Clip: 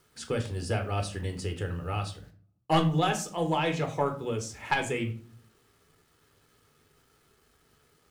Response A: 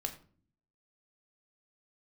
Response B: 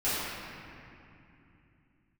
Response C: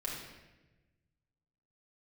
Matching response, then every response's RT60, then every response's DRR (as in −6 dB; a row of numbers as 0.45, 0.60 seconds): A; 0.45, 2.8, 1.1 seconds; 5.0, −14.5, −4.0 decibels